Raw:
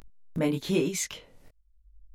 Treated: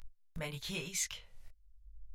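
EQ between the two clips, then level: tilt -1.5 dB/oct; passive tone stack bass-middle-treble 10-0-10; +1.0 dB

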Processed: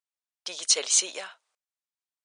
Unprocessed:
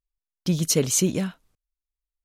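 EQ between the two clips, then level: HPF 620 Hz 24 dB/oct; dynamic EQ 3900 Hz, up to +6 dB, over -39 dBFS, Q 1.7; brick-wall FIR low-pass 9800 Hz; 0.0 dB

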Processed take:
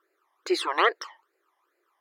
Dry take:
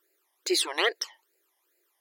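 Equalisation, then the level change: LPF 1700 Hz 6 dB/oct; bell 1200 Hz +12.5 dB 0.78 oct; +2.0 dB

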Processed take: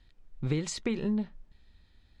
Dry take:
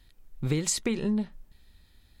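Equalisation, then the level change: air absorption 100 m; -2.0 dB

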